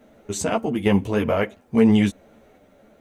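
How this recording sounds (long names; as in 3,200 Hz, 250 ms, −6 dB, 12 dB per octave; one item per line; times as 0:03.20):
sample-and-hold tremolo
a quantiser's noise floor 12 bits, dither none
a shimmering, thickened sound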